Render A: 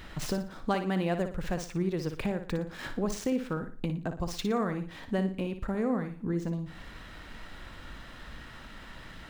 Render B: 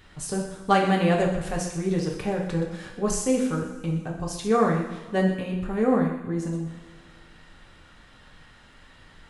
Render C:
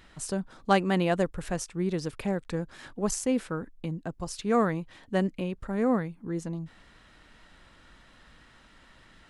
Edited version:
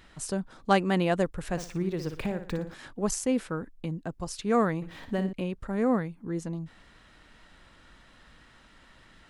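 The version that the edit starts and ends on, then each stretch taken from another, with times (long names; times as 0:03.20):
C
0:01.57–0:02.74: punch in from A
0:04.82–0:05.33: punch in from A
not used: B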